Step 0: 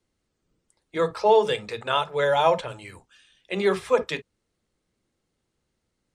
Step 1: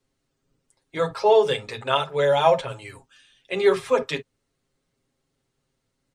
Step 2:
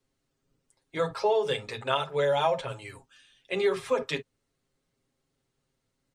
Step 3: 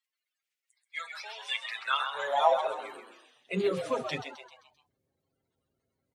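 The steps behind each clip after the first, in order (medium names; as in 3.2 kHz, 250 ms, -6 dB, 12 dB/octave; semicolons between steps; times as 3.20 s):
comb 7.4 ms, depth 72%
compression, threshold -18 dBFS, peak gain reduction 6.5 dB; trim -3 dB
coarse spectral quantiser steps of 30 dB; frequency-shifting echo 131 ms, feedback 47%, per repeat +120 Hz, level -8 dB; high-pass sweep 2.2 kHz -> 72 Hz, 1.53–4.32 s; trim -4 dB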